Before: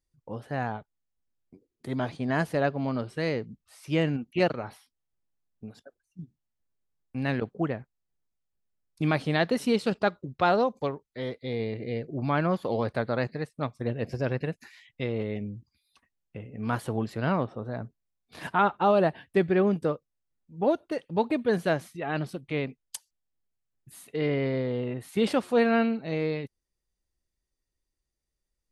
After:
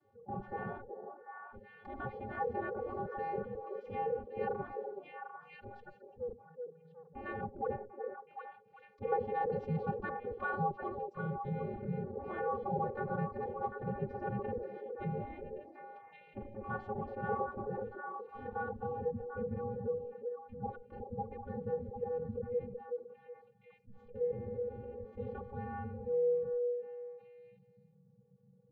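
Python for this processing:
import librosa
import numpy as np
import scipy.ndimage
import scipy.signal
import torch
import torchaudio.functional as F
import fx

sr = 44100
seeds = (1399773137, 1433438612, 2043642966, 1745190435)

p1 = fx.notch_comb(x, sr, f0_hz=990.0)
p2 = fx.vocoder(p1, sr, bands=32, carrier='square', carrier_hz=162.0)
p3 = fx.backlash(p2, sr, play_db=-42.5)
p4 = p2 + (p3 * librosa.db_to_amplitude(-7.0))
p5 = fx.filter_sweep_lowpass(p4, sr, from_hz=420.0, to_hz=170.0, start_s=17.66, end_s=18.99, q=2.6)
p6 = fx.spec_gate(p5, sr, threshold_db=-25, keep='weak')
p7 = p6 + fx.echo_stepped(p6, sr, ms=373, hz=470.0, octaves=1.4, feedback_pct=70, wet_db=-8, dry=0)
p8 = fx.env_flatten(p7, sr, amount_pct=50)
y = p8 * librosa.db_to_amplitude(12.0)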